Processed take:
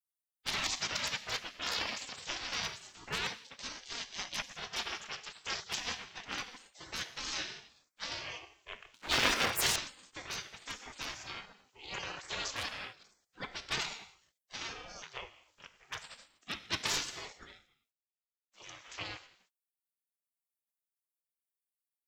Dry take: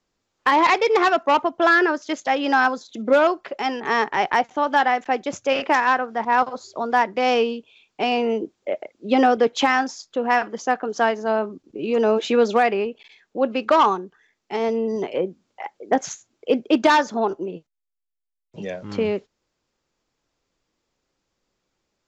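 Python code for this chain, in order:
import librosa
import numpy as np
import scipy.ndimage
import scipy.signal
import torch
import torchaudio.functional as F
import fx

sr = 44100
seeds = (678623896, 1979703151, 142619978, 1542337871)

y = scipy.signal.sosfilt(scipy.signal.butter(2, 81.0, 'highpass', fs=sr, output='sos'), x)
y = fx.high_shelf(y, sr, hz=3900.0, db=8.0)
y = fx.rev_gated(y, sr, seeds[0], gate_ms=320, shape='falling', drr_db=10.0)
y = fx.transient(y, sr, attack_db=-7, sustain_db=8, at=(1.76, 2.23), fade=0.02)
y = fx.leveller(y, sr, passes=3, at=(8.94, 9.76))
y = fx.spec_gate(y, sr, threshold_db=-25, keep='weak')
y = fx.ring_lfo(y, sr, carrier_hz=450.0, swing_pct=55, hz=0.29)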